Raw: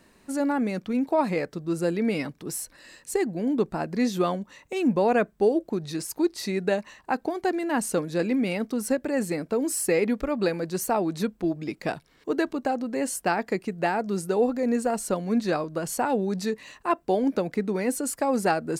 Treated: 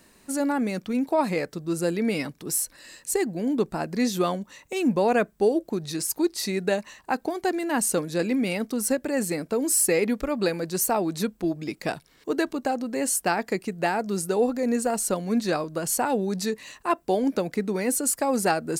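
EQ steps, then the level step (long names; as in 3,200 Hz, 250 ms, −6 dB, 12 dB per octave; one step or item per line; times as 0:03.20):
high-shelf EQ 4,700 Hz +9 dB
0.0 dB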